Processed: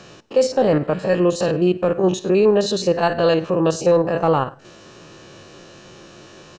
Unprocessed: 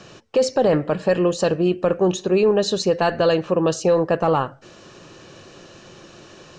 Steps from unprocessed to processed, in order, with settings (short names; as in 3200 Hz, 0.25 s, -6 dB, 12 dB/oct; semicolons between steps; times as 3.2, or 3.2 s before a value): stepped spectrum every 50 ms; on a send: echo 99 ms -23 dB; on the sum: gain +2.5 dB